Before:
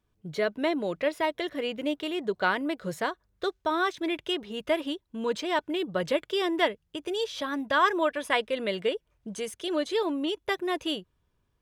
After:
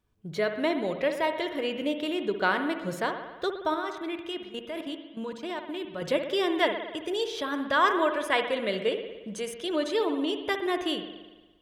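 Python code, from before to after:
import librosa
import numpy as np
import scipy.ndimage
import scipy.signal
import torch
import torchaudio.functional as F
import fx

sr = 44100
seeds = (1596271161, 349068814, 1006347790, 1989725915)

y = fx.level_steps(x, sr, step_db=17, at=(3.74, 6.02))
y = fx.rev_spring(y, sr, rt60_s=1.2, pass_ms=(58,), chirp_ms=70, drr_db=6.5)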